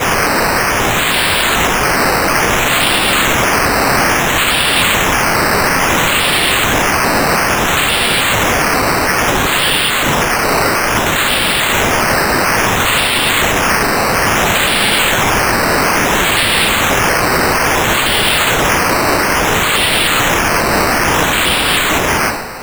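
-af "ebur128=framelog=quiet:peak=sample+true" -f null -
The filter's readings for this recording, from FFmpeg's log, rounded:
Integrated loudness:
  I:         -11.3 LUFS
  Threshold: -21.3 LUFS
Loudness range:
  LRA:         0.8 LU
  Threshold: -31.2 LUFS
  LRA low:   -11.6 LUFS
  LRA high:  -10.8 LUFS
Sample peak:
  Peak:       -1.5 dBFS
True peak:
  Peak:        0.1 dBFS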